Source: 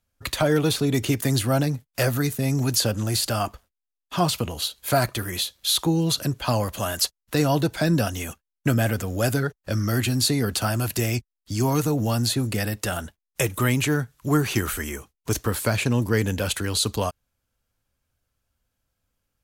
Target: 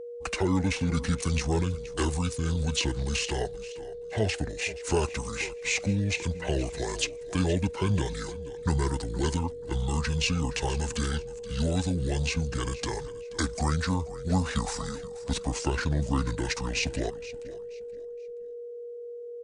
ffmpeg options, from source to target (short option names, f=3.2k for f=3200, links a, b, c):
-filter_complex "[0:a]aeval=exprs='val(0)+0.0251*sin(2*PI*780*n/s)':c=same,asplit=4[a][b][c][d];[b]adelay=476,afreqshift=-39,volume=-16dB[e];[c]adelay=952,afreqshift=-78,volume=-26.5dB[f];[d]adelay=1428,afreqshift=-117,volume=-36.9dB[g];[a][e][f][g]amix=inputs=4:normalize=0,asetrate=26990,aresample=44100,atempo=1.63392,volume=-5dB"